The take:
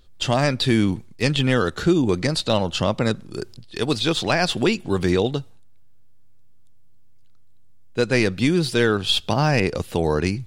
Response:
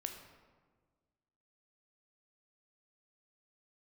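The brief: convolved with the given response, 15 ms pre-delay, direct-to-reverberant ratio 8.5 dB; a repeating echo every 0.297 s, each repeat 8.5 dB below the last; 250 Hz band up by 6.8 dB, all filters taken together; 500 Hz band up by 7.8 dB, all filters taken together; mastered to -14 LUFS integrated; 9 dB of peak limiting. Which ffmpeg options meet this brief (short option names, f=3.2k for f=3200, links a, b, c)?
-filter_complex "[0:a]equalizer=f=250:t=o:g=6.5,equalizer=f=500:t=o:g=7.5,alimiter=limit=-9dB:level=0:latency=1,aecho=1:1:297|594|891|1188:0.376|0.143|0.0543|0.0206,asplit=2[a][b];[1:a]atrim=start_sample=2205,adelay=15[c];[b][c]afir=irnorm=-1:irlink=0,volume=-7dB[d];[a][d]amix=inputs=2:normalize=0,volume=5dB"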